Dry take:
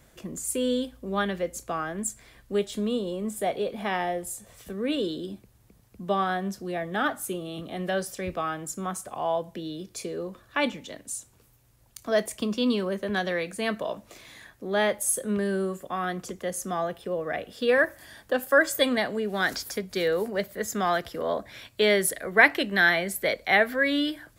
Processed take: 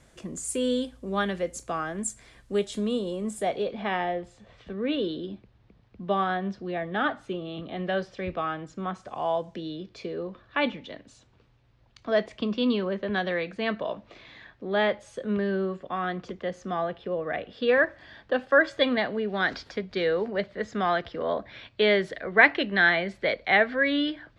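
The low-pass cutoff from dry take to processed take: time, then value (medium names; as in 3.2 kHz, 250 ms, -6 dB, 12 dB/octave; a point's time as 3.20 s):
low-pass 24 dB/octave
3.35 s 9.7 kHz
3.88 s 4 kHz
8.98 s 4 kHz
9.26 s 9.7 kHz
9.81 s 4.1 kHz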